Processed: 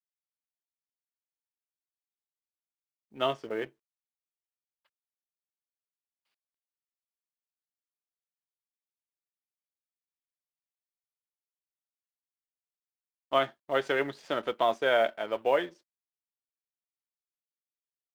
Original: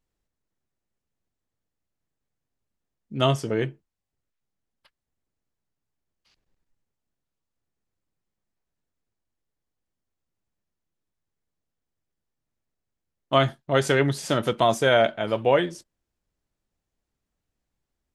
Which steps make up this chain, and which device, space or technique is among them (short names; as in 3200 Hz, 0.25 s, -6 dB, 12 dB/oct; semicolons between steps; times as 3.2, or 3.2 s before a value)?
phone line with mismatched companding (BPF 370–3300 Hz; G.711 law mismatch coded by A); gain -4.5 dB